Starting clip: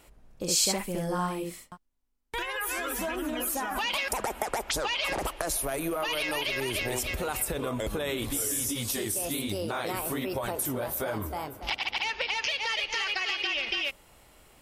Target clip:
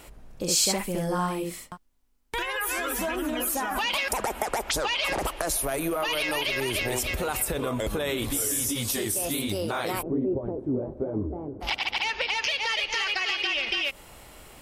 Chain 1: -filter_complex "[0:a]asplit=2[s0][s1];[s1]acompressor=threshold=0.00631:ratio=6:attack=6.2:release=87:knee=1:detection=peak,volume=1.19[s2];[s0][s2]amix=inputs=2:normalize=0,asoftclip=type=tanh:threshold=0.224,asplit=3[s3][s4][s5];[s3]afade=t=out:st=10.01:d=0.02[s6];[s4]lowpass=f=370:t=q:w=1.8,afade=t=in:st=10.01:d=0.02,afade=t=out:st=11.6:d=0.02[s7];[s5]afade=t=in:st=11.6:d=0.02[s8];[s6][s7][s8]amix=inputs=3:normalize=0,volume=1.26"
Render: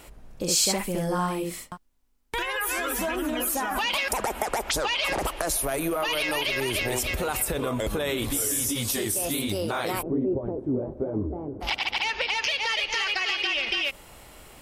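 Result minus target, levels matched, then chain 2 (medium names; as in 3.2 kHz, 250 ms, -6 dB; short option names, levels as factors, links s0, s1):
compression: peak gain reduction -6 dB
-filter_complex "[0:a]asplit=2[s0][s1];[s1]acompressor=threshold=0.00282:ratio=6:attack=6.2:release=87:knee=1:detection=peak,volume=1.19[s2];[s0][s2]amix=inputs=2:normalize=0,asoftclip=type=tanh:threshold=0.224,asplit=3[s3][s4][s5];[s3]afade=t=out:st=10.01:d=0.02[s6];[s4]lowpass=f=370:t=q:w=1.8,afade=t=in:st=10.01:d=0.02,afade=t=out:st=11.6:d=0.02[s7];[s5]afade=t=in:st=11.6:d=0.02[s8];[s6][s7][s8]amix=inputs=3:normalize=0,volume=1.26"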